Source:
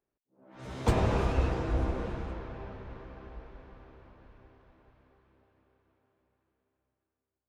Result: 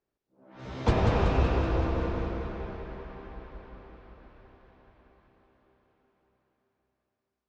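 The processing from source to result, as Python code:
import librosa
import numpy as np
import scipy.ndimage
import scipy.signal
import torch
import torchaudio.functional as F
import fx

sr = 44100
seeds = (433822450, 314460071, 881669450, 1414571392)

p1 = scipy.signal.sosfilt(scipy.signal.butter(4, 5800.0, 'lowpass', fs=sr, output='sos'), x)
p2 = p1 + fx.echo_feedback(p1, sr, ms=189, feedback_pct=59, wet_db=-5.0, dry=0)
y = F.gain(torch.from_numpy(p2), 1.5).numpy()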